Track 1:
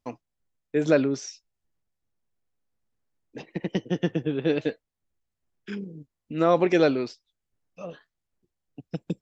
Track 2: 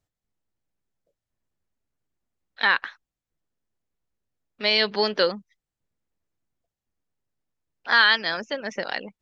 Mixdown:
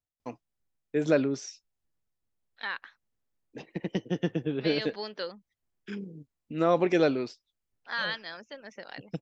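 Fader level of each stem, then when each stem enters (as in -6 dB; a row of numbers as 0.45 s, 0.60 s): -3.5 dB, -14.5 dB; 0.20 s, 0.00 s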